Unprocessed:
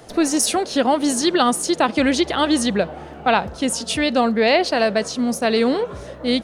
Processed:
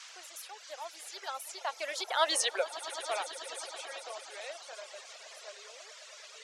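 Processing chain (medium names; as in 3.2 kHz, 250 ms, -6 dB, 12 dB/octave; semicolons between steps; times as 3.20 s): Doppler pass-by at 2.38 s, 30 m/s, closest 4.9 m; band noise 980–7000 Hz -46 dBFS; steep high-pass 520 Hz 36 dB/octave; on a send: echo with a slow build-up 108 ms, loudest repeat 5, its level -15 dB; on the sum: reverb removal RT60 1.4 s; trim -3.5 dB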